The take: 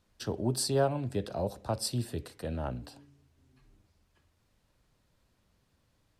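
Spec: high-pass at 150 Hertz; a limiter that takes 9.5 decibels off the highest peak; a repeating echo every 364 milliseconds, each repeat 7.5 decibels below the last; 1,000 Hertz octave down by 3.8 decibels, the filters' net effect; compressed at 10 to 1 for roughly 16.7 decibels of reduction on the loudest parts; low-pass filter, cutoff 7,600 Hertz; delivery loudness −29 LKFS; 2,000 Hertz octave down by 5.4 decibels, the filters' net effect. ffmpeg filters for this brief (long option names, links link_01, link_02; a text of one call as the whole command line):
ffmpeg -i in.wav -af "highpass=150,lowpass=7600,equalizer=frequency=1000:width_type=o:gain=-5,equalizer=frequency=2000:width_type=o:gain=-5.5,acompressor=threshold=-41dB:ratio=10,alimiter=level_in=15dB:limit=-24dB:level=0:latency=1,volume=-15dB,aecho=1:1:364|728|1092|1456|1820:0.422|0.177|0.0744|0.0312|0.0131,volume=20dB" out.wav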